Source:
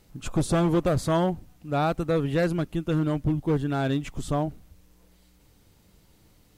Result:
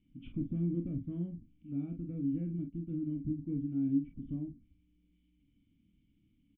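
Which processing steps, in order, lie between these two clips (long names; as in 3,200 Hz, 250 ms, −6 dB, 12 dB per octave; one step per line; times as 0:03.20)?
formant resonators in series i
flat-topped bell 610 Hz −10.5 dB
treble cut that deepens with the level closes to 850 Hz, closed at −36 dBFS
on a send: ambience of single reflections 29 ms −7 dB, 47 ms −8.5 dB
on the sum: level −2.5 dB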